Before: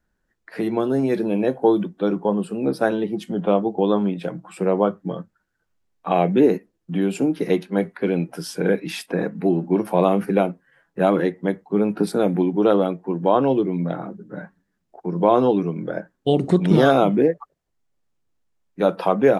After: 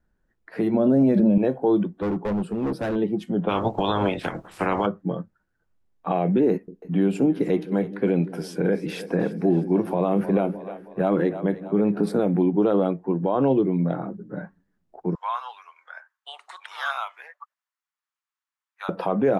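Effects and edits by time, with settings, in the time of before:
0:00.74–0:01.38: hollow resonant body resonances 210/570 Hz, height 15 dB
0:01.94–0:02.96: gain into a clipping stage and back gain 22.5 dB
0:03.48–0:04.85: ceiling on every frequency bin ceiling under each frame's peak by 27 dB
0:06.51–0:12.20: echo with a time of its own for lows and highs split 440 Hz, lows 168 ms, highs 310 ms, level −16 dB
0:15.15–0:18.89: Butterworth high-pass 1,000 Hz
whole clip: high-shelf EQ 2,400 Hz −9 dB; brickwall limiter −12 dBFS; low-shelf EQ 130 Hz +4 dB

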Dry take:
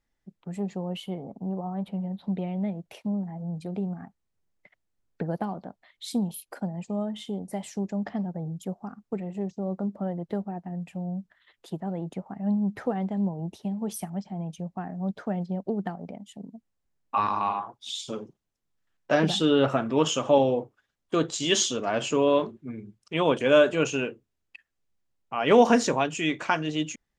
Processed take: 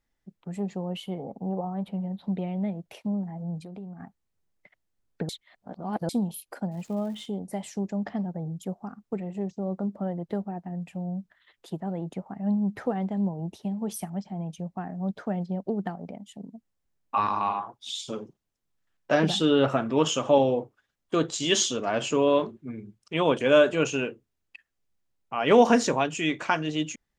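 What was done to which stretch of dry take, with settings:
0:01.19–0:01.65: hollow resonant body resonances 500/790 Hz, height 7 dB, ringing for 20 ms
0:03.60–0:04.00: downward compressor 2.5 to 1, threshold −41 dBFS
0:05.29–0:06.09: reverse
0:06.71–0:07.25: surface crackle 560 per second −46 dBFS

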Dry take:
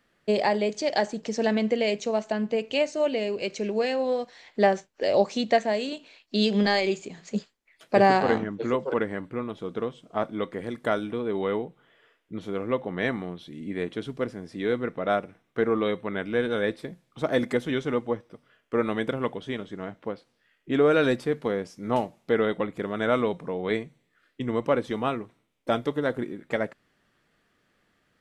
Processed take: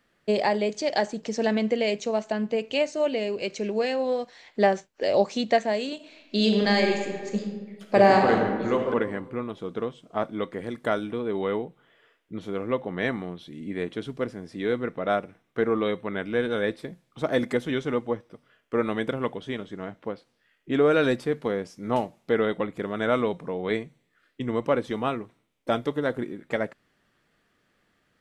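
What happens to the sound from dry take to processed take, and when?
0:05.95–0:08.85: thrown reverb, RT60 1.4 s, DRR 2.5 dB

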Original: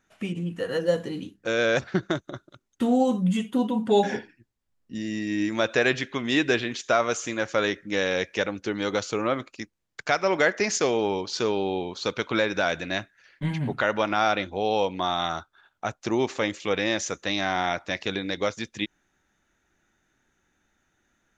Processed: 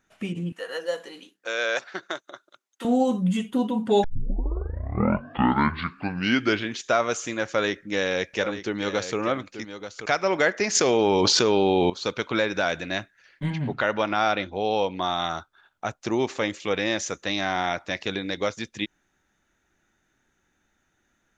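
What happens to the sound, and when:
0:00.52–0:02.85: high-pass filter 650 Hz
0:04.04: tape start 2.78 s
0:07.45–0:10.06: single-tap delay 884 ms −11 dB
0:10.75–0:11.90: envelope flattener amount 100%
0:13.50–0:15.02: low-pass filter 6,200 Hz 24 dB per octave

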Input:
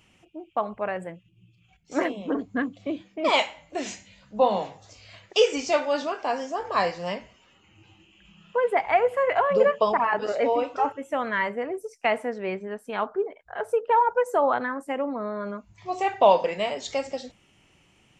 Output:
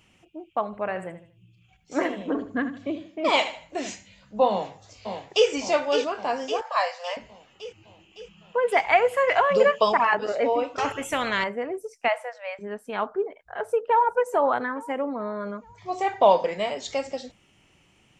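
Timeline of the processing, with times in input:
0:00.65–0:03.90: repeating echo 78 ms, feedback 32%, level −11.5 dB
0:04.49–0:05.48: delay throw 560 ms, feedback 60%, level −6.5 dB
0:06.61–0:07.17: Butterworth high-pass 530 Hz 96 dB per octave
0:08.68–0:10.15: high-shelf EQ 2,100 Hz +11.5 dB
0:10.78–0:11.44: every bin compressed towards the loudest bin 2 to 1
0:12.08–0:12.59: linear-phase brick-wall high-pass 490 Hz
0:13.59–0:14.06: delay throw 430 ms, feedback 55%, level −17.5 dB
0:14.59–0:16.70: notch filter 2,700 Hz, Q 9.9

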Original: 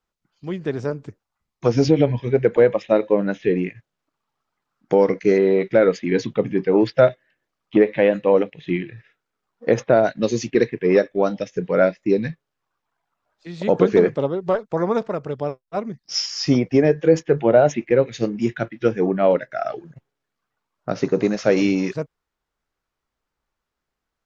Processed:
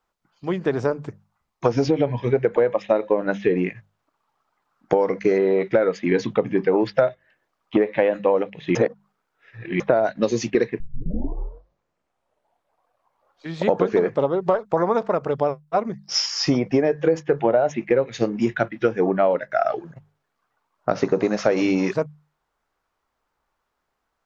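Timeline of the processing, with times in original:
0:08.75–0:09.80: reverse
0:10.80: tape start 2.87 s
whole clip: parametric band 900 Hz +8 dB 1.9 octaves; mains-hum notches 50/100/150/200 Hz; downward compressor 6 to 1, threshold −17 dBFS; level +1.5 dB

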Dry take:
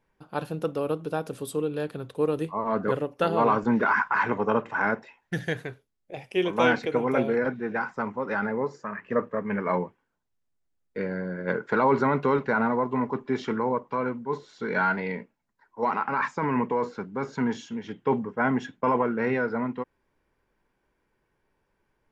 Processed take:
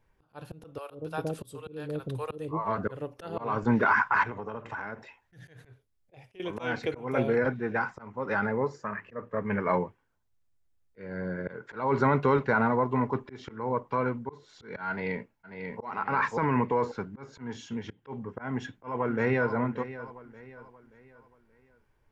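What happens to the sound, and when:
0:00.78–0:02.78: multiband delay without the direct sound highs, lows 120 ms, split 600 Hz
0:04.23–0:06.40: downward compressor 12 to 1, threshold −32 dBFS
0:14.89–0:15.83: delay throw 540 ms, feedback 25%, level −2.5 dB
0:18.50–0:19.52: delay throw 580 ms, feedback 40%, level −14.5 dB
whole clip: volume swells 317 ms; low shelf with overshoot 140 Hz +6.5 dB, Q 1.5

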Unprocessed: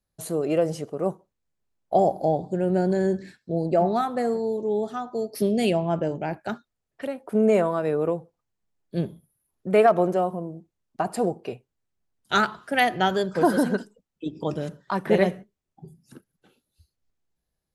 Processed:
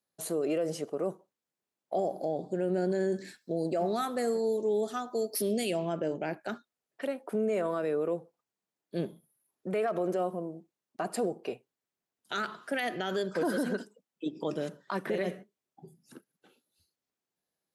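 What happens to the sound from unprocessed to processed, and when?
0:03.12–0:05.93: high-shelf EQ 5,000 Hz +11.5 dB
whole clip: high-pass filter 240 Hz 12 dB per octave; dynamic equaliser 860 Hz, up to −8 dB, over −39 dBFS, Q 2.4; brickwall limiter −20.5 dBFS; level −1.5 dB

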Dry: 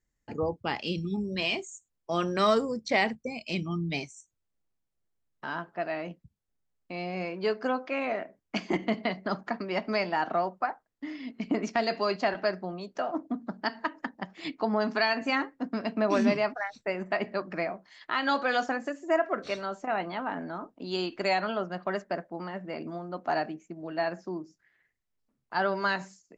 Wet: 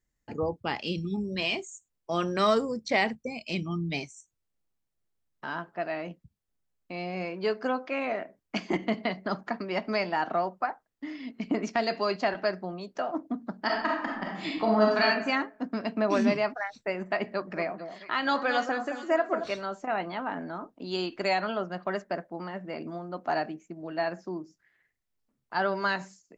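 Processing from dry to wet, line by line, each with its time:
0:13.63–0:15.03: thrown reverb, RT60 0.85 s, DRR −3 dB
0:17.25–0:19.51: delay that swaps between a low-pass and a high-pass 221 ms, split 1,300 Hz, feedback 51%, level −8.5 dB

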